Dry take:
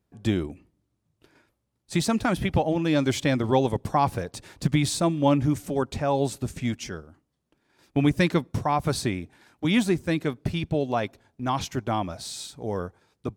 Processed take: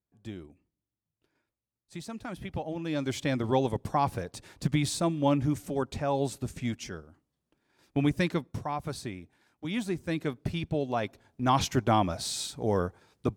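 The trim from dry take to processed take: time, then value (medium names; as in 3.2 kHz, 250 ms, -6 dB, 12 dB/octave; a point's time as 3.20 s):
2.06 s -16.5 dB
3.44 s -4.5 dB
8.02 s -4.5 dB
9.00 s -11 dB
9.70 s -11 dB
10.25 s -4.5 dB
10.94 s -4.5 dB
11.56 s +2.5 dB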